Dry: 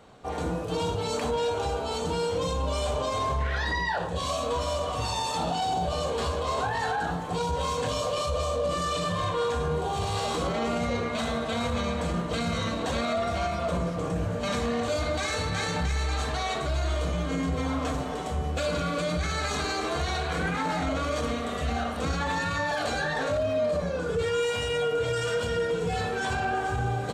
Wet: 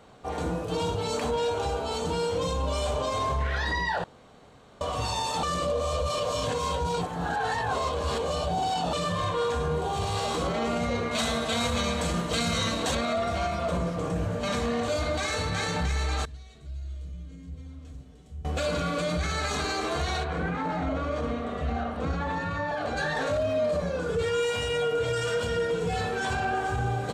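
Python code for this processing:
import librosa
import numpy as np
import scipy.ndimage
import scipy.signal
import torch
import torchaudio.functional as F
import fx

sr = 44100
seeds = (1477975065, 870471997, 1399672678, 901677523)

y = fx.high_shelf(x, sr, hz=2900.0, db=10.0, at=(11.11, 12.95))
y = fx.tone_stack(y, sr, knobs='10-0-1', at=(16.25, 18.45))
y = fx.lowpass(y, sr, hz=1300.0, slope=6, at=(20.23, 22.96), fade=0.02)
y = fx.edit(y, sr, fx.room_tone_fill(start_s=4.04, length_s=0.77),
    fx.reverse_span(start_s=5.43, length_s=3.5), tone=tone)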